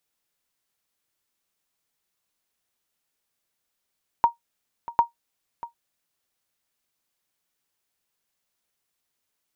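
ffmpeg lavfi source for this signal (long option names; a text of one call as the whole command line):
ffmpeg -f lavfi -i "aevalsrc='0.376*(sin(2*PI*938*mod(t,0.75))*exp(-6.91*mod(t,0.75)/0.13)+0.141*sin(2*PI*938*max(mod(t,0.75)-0.64,0))*exp(-6.91*max(mod(t,0.75)-0.64,0)/0.13))':duration=1.5:sample_rate=44100" out.wav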